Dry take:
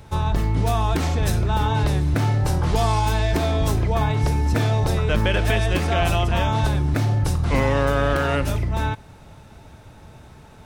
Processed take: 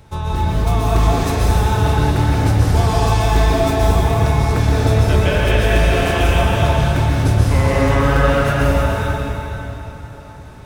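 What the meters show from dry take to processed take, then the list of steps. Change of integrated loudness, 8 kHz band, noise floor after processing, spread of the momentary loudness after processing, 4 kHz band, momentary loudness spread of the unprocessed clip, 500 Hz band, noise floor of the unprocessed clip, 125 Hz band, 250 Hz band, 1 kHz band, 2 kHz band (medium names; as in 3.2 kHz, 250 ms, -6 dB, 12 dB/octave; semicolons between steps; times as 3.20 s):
+5.0 dB, +5.0 dB, -35 dBFS, 8 LU, +4.5 dB, 2 LU, +6.0 dB, -46 dBFS, +5.0 dB, +5.5 dB, +5.0 dB, +5.5 dB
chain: plate-style reverb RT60 3.6 s, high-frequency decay 0.8×, pre-delay 110 ms, DRR -6 dB; trim -1.5 dB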